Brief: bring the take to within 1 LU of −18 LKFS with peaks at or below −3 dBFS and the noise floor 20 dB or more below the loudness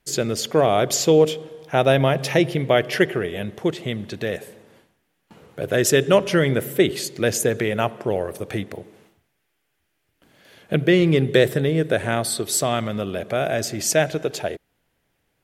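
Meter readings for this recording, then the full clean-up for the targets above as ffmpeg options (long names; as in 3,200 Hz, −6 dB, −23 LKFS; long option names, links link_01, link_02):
integrated loudness −21.0 LKFS; sample peak −3.5 dBFS; target loudness −18.0 LKFS
→ -af "volume=3dB,alimiter=limit=-3dB:level=0:latency=1"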